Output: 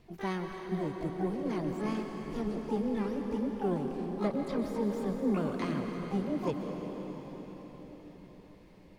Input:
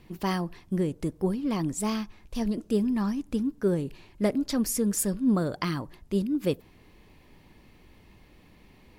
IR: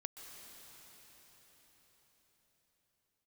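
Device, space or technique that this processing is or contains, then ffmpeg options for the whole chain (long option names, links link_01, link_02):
shimmer-style reverb: -filter_complex "[0:a]acrossover=split=3800[link_01][link_02];[link_02]acompressor=threshold=-53dB:ratio=4:attack=1:release=60[link_03];[link_01][link_03]amix=inputs=2:normalize=0,highshelf=frequency=4000:gain=-5,asplit=2[link_04][link_05];[link_05]asetrate=88200,aresample=44100,atempo=0.5,volume=-7dB[link_06];[link_04][link_06]amix=inputs=2:normalize=0[link_07];[1:a]atrim=start_sample=2205[link_08];[link_07][link_08]afir=irnorm=-1:irlink=0,volume=-2.5dB"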